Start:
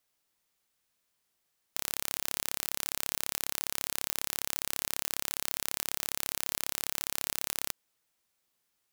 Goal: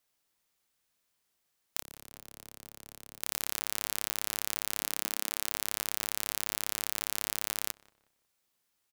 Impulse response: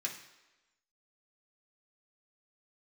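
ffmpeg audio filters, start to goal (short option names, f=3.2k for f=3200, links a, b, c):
-filter_complex "[0:a]asettb=1/sr,asplit=3[a][b][c];[a]atrim=end=1.814[d];[b]atrim=start=1.81:end=3.21,asetpts=PTS-STARTPTS,afade=t=in:d=0.004:c=qsin,afade=t=out:st=1.396:d=0.004:c=qsin,acrossover=split=220|800[e][f][g];[e]acompressor=threshold=-56dB:ratio=4[h];[f]acompressor=threshold=-58dB:ratio=4[i];[g]acompressor=threshold=-47dB:ratio=4[j];[h][i][j]amix=inputs=3:normalize=0[k];[c]atrim=start=3.206[l];[d][k]acrossfade=d=0.004:c1=hsin:c2=qsin[m];[m][l]acrossfade=d=0.004:c1=qsin:c2=hsin,asettb=1/sr,asplit=3[n][o][p];[n]atrim=end=4.814[q];[o]atrim=start=4.81:end=5.29,asetpts=PTS-STARTPTS,afade=t=in:d=0.004:c=qsin,afade=t=out:st=0.476:d=0.004:c=qsin,lowshelf=f=180:t=q:w=1.5:g=-11.5[r];[p]atrim=start=5.286[s];[q][r]acrossfade=d=0.004:c1=hsin:c2=qsin[t];[t][s]acrossfade=d=0.004:c1=qsin:c2=hsin,asplit=2[u][v];[v]adelay=182,lowpass=f=2k:p=1,volume=-21.5dB,asplit=2[w][x];[x]adelay=182,lowpass=f=2k:p=1,volume=0.37,asplit=2[y][z];[z]adelay=182,lowpass=f=2k:p=1,volume=0.37[aa];[u][w][y][aa]amix=inputs=4:normalize=0"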